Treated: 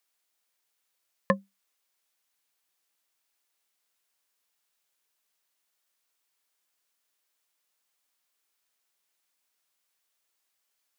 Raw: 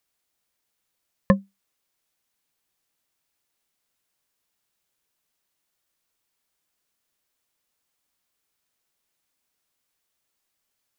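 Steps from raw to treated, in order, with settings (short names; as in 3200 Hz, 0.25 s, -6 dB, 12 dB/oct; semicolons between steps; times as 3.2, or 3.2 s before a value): HPF 610 Hz 6 dB/oct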